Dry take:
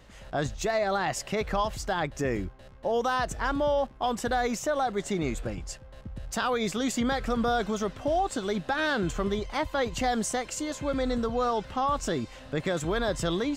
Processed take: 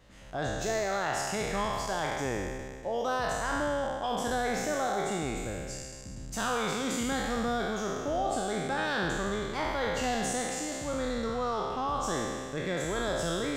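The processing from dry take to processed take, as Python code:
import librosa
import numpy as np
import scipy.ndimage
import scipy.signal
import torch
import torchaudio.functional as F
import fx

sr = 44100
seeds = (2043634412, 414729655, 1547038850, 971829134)

y = fx.spec_trails(x, sr, decay_s=1.98)
y = F.gain(torch.from_numpy(y), -7.0).numpy()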